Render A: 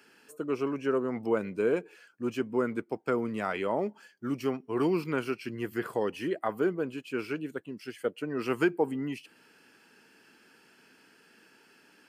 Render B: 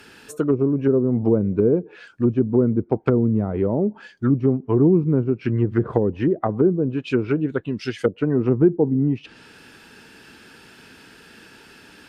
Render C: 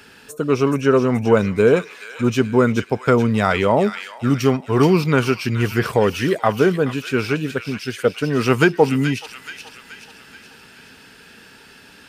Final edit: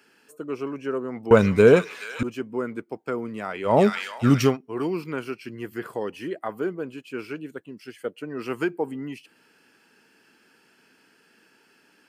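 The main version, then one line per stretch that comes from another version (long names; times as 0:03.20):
A
0:01.31–0:02.23: punch in from C
0:03.71–0:04.50: punch in from C, crossfade 0.16 s
not used: B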